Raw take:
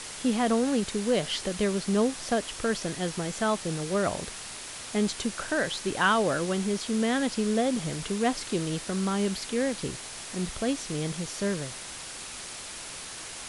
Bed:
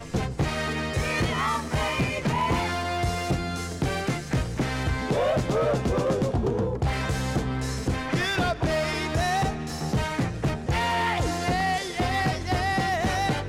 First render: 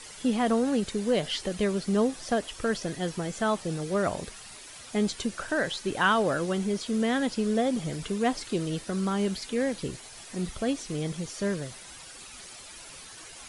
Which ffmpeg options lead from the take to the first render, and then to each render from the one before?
ffmpeg -i in.wav -af "afftdn=noise_reduction=10:noise_floor=-41" out.wav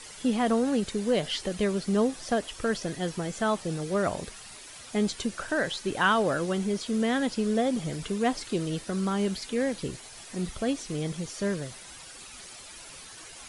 ffmpeg -i in.wav -af anull out.wav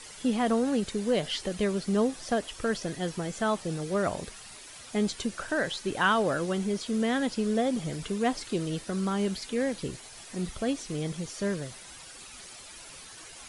ffmpeg -i in.wav -af "volume=-1dB" out.wav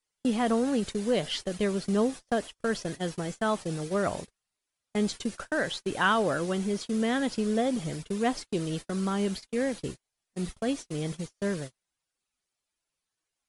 ffmpeg -i in.wav -af "agate=range=-40dB:threshold=-35dB:ratio=16:detection=peak" out.wav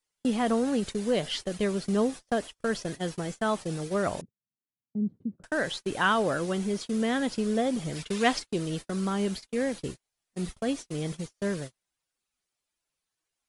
ffmpeg -i in.wav -filter_complex "[0:a]asettb=1/sr,asplit=3[link_01][link_02][link_03];[link_01]atrim=end=4.214[link_04];[link_02]atrim=start=4.21:end=5.44,asetpts=PTS-STARTPTS,afade=type=in:duration=0.004:curve=qsin,afade=type=out:start_time=1.226:duration=0.004:curve=qsin,asuperpass=centerf=170:order=4:qfactor=1.1[link_05];[link_03]atrim=start=5.436[link_06];[link_04][link_05]acrossfade=duration=0.004:curve1=hsin:curve2=qsin[link_07];[link_07][link_06]acrossfade=duration=0.004:curve1=qsin:curve2=hsin,asplit=3[link_08][link_09][link_10];[link_08]afade=type=out:start_time=7.95:duration=0.02[link_11];[link_09]equalizer=frequency=2900:width=0.37:gain=9.5,afade=type=in:start_time=7.95:duration=0.02,afade=type=out:start_time=8.38:duration=0.02[link_12];[link_10]afade=type=in:start_time=8.38:duration=0.02[link_13];[link_11][link_12][link_13]amix=inputs=3:normalize=0" out.wav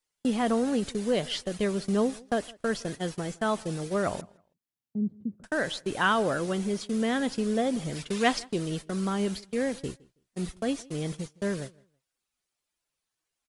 ffmpeg -i in.wav -filter_complex "[0:a]asplit=2[link_01][link_02];[link_02]adelay=162,lowpass=frequency=3800:poles=1,volume=-24dB,asplit=2[link_03][link_04];[link_04]adelay=162,lowpass=frequency=3800:poles=1,volume=0.22[link_05];[link_01][link_03][link_05]amix=inputs=3:normalize=0" out.wav

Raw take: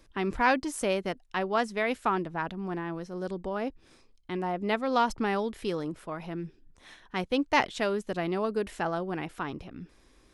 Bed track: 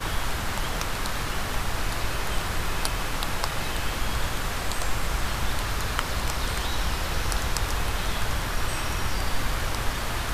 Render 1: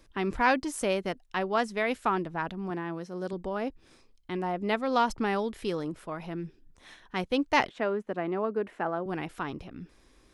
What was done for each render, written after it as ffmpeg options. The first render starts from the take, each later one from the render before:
ffmpeg -i in.wav -filter_complex "[0:a]asettb=1/sr,asplit=3[link_01][link_02][link_03];[link_01]atrim=end=2.704[link_04];[link_02]atrim=start=2.7:end=3.33,asetpts=PTS-STARTPTS,afade=type=in:duration=0.004:curve=qsin,afade=type=out:start_time=0.626:duration=0.004:curve=qsin,highpass=110[link_05];[link_03]atrim=start=3.326[link_06];[link_04][link_05]acrossfade=duration=0.004:curve1=hsin:curve2=qsin[link_07];[link_07][link_06]acrossfade=duration=0.004:curve1=qsin:curve2=hsin,asettb=1/sr,asplit=3[link_08][link_09][link_10];[link_08]atrim=end=7.694[link_11];[link_09]atrim=start=7.69:end=9.06,asetpts=PTS-STARTPTS,afade=type=in:duration=0.004:curve=qsin,afade=type=out:start_time=1.366:duration=0.004:curve=qsin,acrossover=split=160 2300:gain=0.1 1 0.112[link_12][link_13][link_14];[link_12][link_13][link_14]amix=inputs=3:normalize=0[link_15];[link_10]atrim=start=9.056[link_16];[link_11][link_15]acrossfade=duration=0.004:curve1=hsin:curve2=qsin[link_17];[link_17][link_16]acrossfade=duration=0.004:curve1=qsin:curve2=hsin" out.wav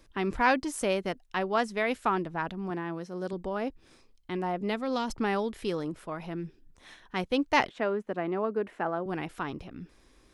ffmpeg -i in.wav -filter_complex "[0:a]asettb=1/sr,asplit=3[link_01][link_02][link_03];[link_01]atrim=end=4.614[link_04];[link_02]atrim=start=4.61:end=5.1,asetpts=PTS-STARTPTS,afade=type=in:duration=0.004:curve=qsin,afade=type=out:start_time=0.486:duration=0.004:curve=qsin,acrossover=split=390|3000[link_05][link_06][link_07];[link_06]acompressor=threshold=-32dB:ratio=3:attack=3.2:release=140:knee=2.83:detection=peak[link_08];[link_05][link_08][link_07]amix=inputs=3:normalize=0[link_09];[link_03]atrim=start=5.096[link_10];[link_04][link_09]acrossfade=duration=0.004:curve1=hsin:curve2=qsin[link_11];[link_11][link_10]acrossfade=duration=0.004:curve1=qsin:curve2=hsin" out.wav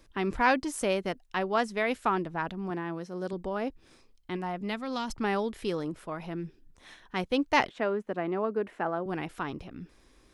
ffmpeg -i in.wav -filter_complex "[0:a]asettb=1/sr,asplit=3[link_01][link_02][link_03];[link_01]atrim=end=4.364[link_04];[link_02]atrim=start=4.36:end=5.24,asetpts=PTS-STARTPTS,afade=type=in:duration=0.004:curve=qsin,afade=type=out:start_time=0.876:duration=0.004:curve=qsin,equalizer=frequency=450:width_type=o:width=1.4:gain=-6.5[link_05];[link_03]atrim=start=5.236[link_06];[link_04][link_05]acrossfade=duration=0.004:curve1=hsin:curve2=qsin[link_07];[link_07][link_06]acrossfade=duration=0.004:curve1=qsin:curve2=hsin" out.wav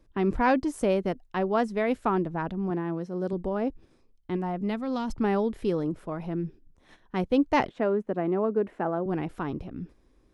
ffmpeg -i in.wav -af "agate=range=-7dB:threshold=-50dB:ratio=16:detection=peak,tiltshelf=frequency=970:gain=6.5" out.wav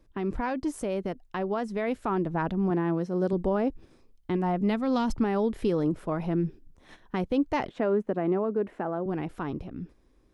ffmpeg -i in.wav -af "alimiter=limit=-21dB:level=0:latency=1:release=144,dynaudnorm=framelen=220:gausssize=17:maxgain=4dB" out.wav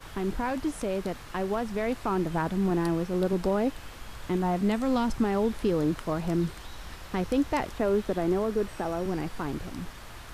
ffmpeg -i in.wav -i bed.wav -filter_complex "[1:a]volume=-15.5dB[link_01];[0:a][link_01]amix=inputs=2:normalize=0" out.wav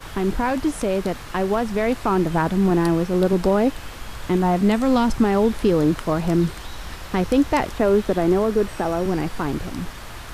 ffmpeg -i in.wav -af "volume=8dB" out.wav

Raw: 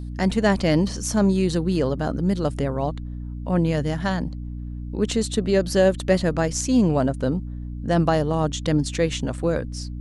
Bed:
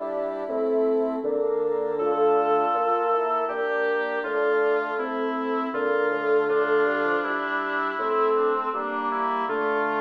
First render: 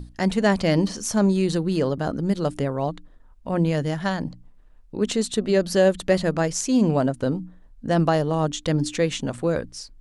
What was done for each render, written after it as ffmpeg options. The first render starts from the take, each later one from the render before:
ffmpeg -i in.wav -af "bandreject=frequency=60:width_type=h:width=6,bandreject=frequency=120:width_type=h:width=6,bandreject=frequency=180:width_type=h:width=6,bandreject=frequency=240:width_type=h:width=6,bandreject=frequency=300:width_type=h:width=6" out.wav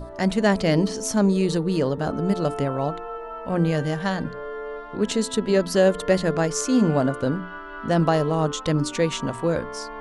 ffmpeg -i in.wav -i bed.wav -filter_complex "[1:a]volume=-11dB[link_01];[0:a][link_01]amix=inputs=2:normalize=0" out.wav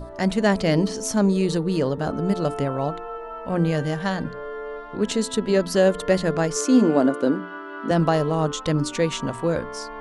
ffmpeg -i in.wav -filter_complex "[0:a]asettb=1/sr,asplit=3[link_01][link_02][link_03];[link_01]atrim=end=6.564[link_04];[link_02]atrim=start=6.56:end=7.91,asetpts=PTS-STARTPTS,afade=type=in:duration=0.004:curve=qsin,afade=type=out:start_time=1.346:duration=0.004:curve=qsin,highpass=frequency=290:width_type=q:width=2[link_05];[link_03]atrim=start=7.906[link_06];[link_04][link_05]acrossfade=duration=0.004:curve1=hsin:curve2=qsin[link_07];[link_07][link_06]acrossfade=duration=0.004:curve1=qsin:curve2=hsin" out.wav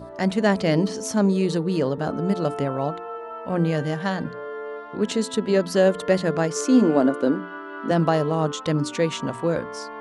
ffmpeg -i in.wav -af "highpass=110,highshelf=frequency=5500:gain=-4.5" out.wav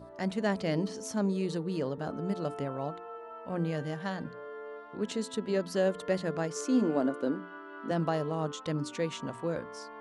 ffmpeg -i in.wav -af "volume=-10dB" out.wav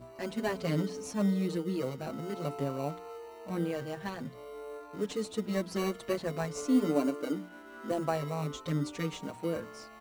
ffmpeg -i in.wav -filter_complex "[0:a]asplit=2[link_01][link_02];[link_02]acrusher=samples=26:mix=1:aa=0.000001,volume=-8dB[link_03];[link_01][link_03]amix=inputs=2:normalize=0,asplit=2[link_04][link_05];[link_05]adelay=5.7,afreqshift=0.5[link_06];[link_04][link_06]amix=inputs=2:normalize=1" out.wav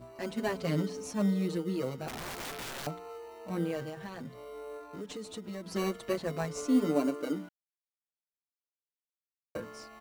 ffmpeg -i in.wav -filter_complex "[0:a]asettb=1/sr,asplit=3[link_01][link_02][link_03];[link_01]atrim=end=2.084[link_04];[link_02]atrim=start=2.08:end=2.87,asetpts=PTS-STARTPTS,afade=type=in:duration=0.004:curve=qsin,afade=type=out:start_time=0.786:duration=0.004:curve=qsin,aeval=exprs='(mod(56.2*val(0)+1,2)-1)/56.2':channel_layout=same[link_05];[link_03]atrim=start=2.866[link_06];[link_04][link_05]acrossfade=duration=0.004:curve1=hsin:curve2=qsin[link_07];[link_07][link_06]acrossfade=duration=0.004:curve1=qsin:curve2=hsin,asettb=1/sr,asplit=3[link_08][link_09][link_10];[link_08]atrim=end=3.894[link_11];[link_09]atrim=start=3.89:end=5.66,asetpts=PTS-STARTPTS,afade=type=in:duration=0.004:curve=qsin,afade=type=out:start_time=1.766:duration=0.004:curve=qsin,acompressor=threshold=-38dB:ratio=4:attack=3.2:release=140:knee=1:detection=peak[link_12];[link_10]atrim=start=5.656[link_13];[link_11][link_12]acrossfade=duration=0.004:curve1=hsin:curve2=qsin[link_14];[link_14][link_13]acrossfade=duration=0.004:curve1=qsin:curve2=hsin,asplit=3[link_15][link_16][link_17];[link_15]atrim=end=7.49,asetpts=PTS-STARTPTS,afade=type=out:start_time=7.486:duration=0.004:curve=hsin[link_18];[link_16]atrim=start=7.49:end=9.55,asetpts=PTS-STARTPTS,volume=0[link_19];[link_17]atrim=start=9.55,asetpts=PTS-STARTPTS,afade=type=in:duration=0.004:curve=hsin[link_20];[link_18][link_19][link_20]concat=n=3:v=0:a=1" out.wav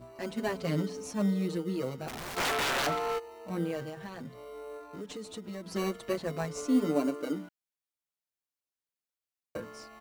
ffmpeg -i in.wav -filter_complex "[0:a]asplit=3[link_01][link_02][link_03];[link_01]afade=type=out:start_time=2.36:duration=0.02[link_04];[link_02]asplit=2[link_05][link_06];[link_06]highpass=frequency=720:poles=1,volume=26dB,asoftclip=type=tanh:threshold=-21.5dB[link_07];[link_05][link_07]amix=inputs=2:normalize=0,lowpass=frequency=7300:poles=1,volume=-6dB,afade=type=in:start_time=2.36:duration=0.02,afade=type=out:start_time=3.18:duration=0.02[link_08];[link_03]afade=type=in:start_time=3.18:duration=0.02[link_09];[link_04][link_08][link_09]amix=inputs=3:normalize=0" out.wav

